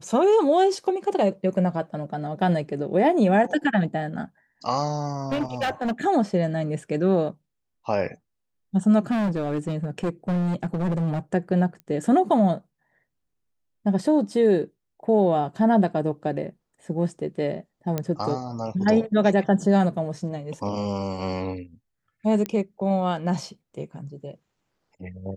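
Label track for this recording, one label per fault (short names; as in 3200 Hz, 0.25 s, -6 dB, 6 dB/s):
5.290000	5.920000	clipped -21.5 dBFS
9.100000	11.190000	clipped -21 dBFS
11.800000	11.800000	pop -27 dBFS
17.980000	17.980000	pop -12 dBFS
22.460000	22.460000	pop -14 dBFS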